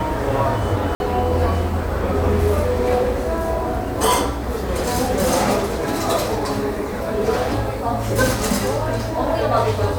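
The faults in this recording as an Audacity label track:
0.950000	1.000000	drop-out 51 ms

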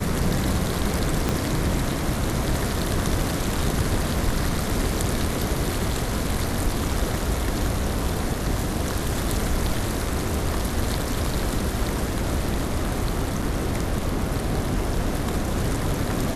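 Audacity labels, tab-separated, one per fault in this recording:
1.290000	1.290000	click −8 dBFS
13.420000	13.420000	drop-out 4.7 ms

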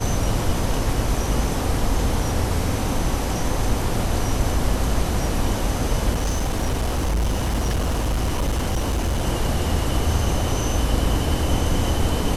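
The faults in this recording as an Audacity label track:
6.110000	9.250000	clipping −18 dBFS

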